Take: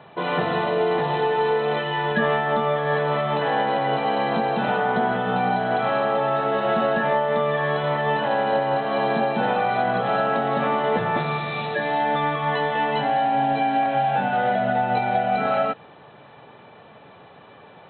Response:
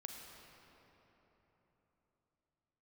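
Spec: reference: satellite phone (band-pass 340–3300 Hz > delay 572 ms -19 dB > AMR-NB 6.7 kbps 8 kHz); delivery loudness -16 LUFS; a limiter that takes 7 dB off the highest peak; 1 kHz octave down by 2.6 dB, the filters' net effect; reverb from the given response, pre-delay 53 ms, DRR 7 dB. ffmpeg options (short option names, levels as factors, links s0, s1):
-filter_complex "[0:a]equalizer=f=1000:t=o:g=-3.5,alimiter=limit=0.168:level=0:latency=1,asplit=2[s0][s1];[1:a]atrim=start_sample=2205,adelay=53[s2];[s1][s2]afir=irnorm=-1:irlink=0,volume=0.668[s3];[s0][s3]amix=inputs=2:normalize=0,highpass=340,lowpass=3300,aecho=1:1:572:0.112,volume=3.55" -ar 8000 -c:a libopencore_amrnb -b:a 6700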